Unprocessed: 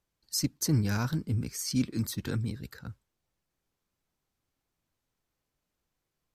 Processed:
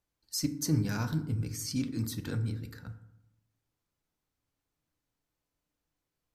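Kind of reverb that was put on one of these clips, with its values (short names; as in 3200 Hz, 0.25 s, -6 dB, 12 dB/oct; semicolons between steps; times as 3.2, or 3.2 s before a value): FDN reverb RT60 0.8 s, low-frequency decay 1.3×, high-frequency decay 0.45×, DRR 7.5 dB; gain -3.5 dB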